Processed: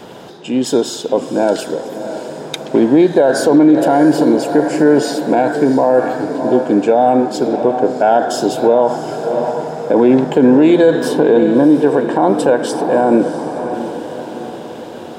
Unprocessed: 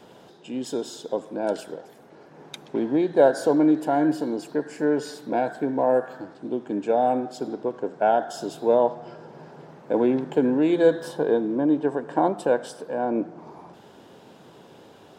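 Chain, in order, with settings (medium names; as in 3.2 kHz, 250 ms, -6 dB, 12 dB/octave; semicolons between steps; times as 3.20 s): echo that smears into a reverb 670 ms, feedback 53%, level -12 dB; loudness maximiser +15.5 dB; trim -1 dB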